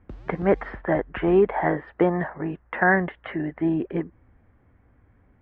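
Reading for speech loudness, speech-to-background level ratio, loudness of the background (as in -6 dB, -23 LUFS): -24.5 LUFS, 19.5 dB, -44.0 LUFS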